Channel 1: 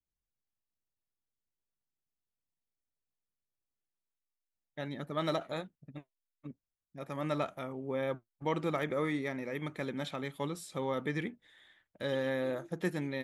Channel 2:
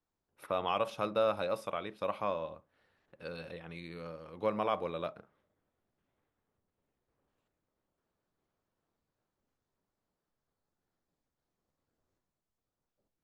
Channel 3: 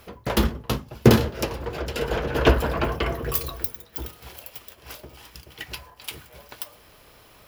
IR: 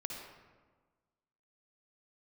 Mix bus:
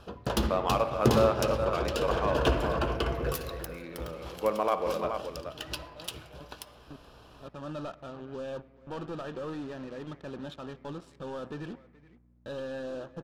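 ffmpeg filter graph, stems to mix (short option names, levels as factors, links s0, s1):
-filter_complex "[0:a]volume=39.8,asoftclip=hard,volume=0.0251,acrusher=bits=6:mix=0:aa=0.5,adelay=450,volume=0.75,asplit=3[s0][s1][s2];[s1]volume=0.15[s3];[s2]volume=0.1[s4];[1:a]highpass=230,equalizer=f=4700:w=0.99:g=-10.5,aeval=exprs='val(0)+0.000501*(sin(2*PI*60*n/s)+sin(2*PI*2*60*n/s)/2+sin(2*PI*3*60*n/s)/3+sin(2*PI*4*60*n/s)/4+sin(2*PI*5*60*n/s)/5)':c=same,volume=1.19,asplit=4[s5][s6][s7][s8];[s6]volume=0.668[s9];[s7]volume=0.668[s10];[2:a]highshelf=f=6200:g=9.5,volume=0.75,asplit=3[s11][s12][s13];[s12]volume=0.335[s14];[s13]volume=0.0631[s15];[s8]apad=whole_len=603445[s16];[s0][s16]sidechaincompress=threshold=0.00355:ratio=8:attack=16:release=1250[s17];[s17][s11]amix=inputs=2:normalize=0,asuperstop=centerf=2100:order=4:qfactor=3.1,acompressor=threshold=0.0282:ratio=3,volume=1[s18];[3:a]atrim=start_sample=2205[s19];[s3][s9][s14]amix=inputs=3:normalize=0[s20];[s20][s19]afir=irnorm=-1:irlink=0[s21];[s4][s10][s15]amix=inputs=3:normalize=0,aecho=0:1:426:1[s22];[s5][s18][s21][s22]amix=inputs=4:normalize=0,adynamicsmooth=sensitivity=7.5:basefreq=3500"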